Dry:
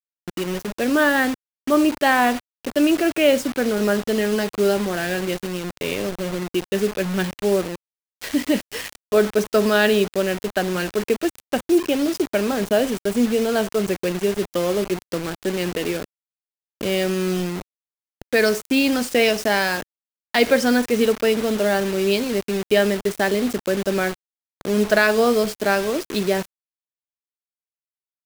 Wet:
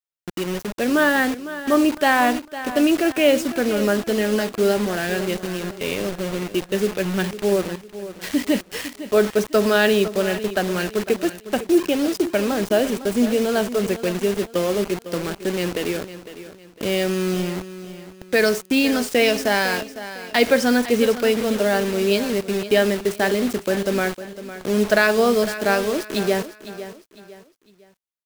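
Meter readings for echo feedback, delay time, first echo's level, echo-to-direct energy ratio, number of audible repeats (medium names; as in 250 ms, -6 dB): 35%, 505 ms, -13.5 dB, -13.0 dB, 3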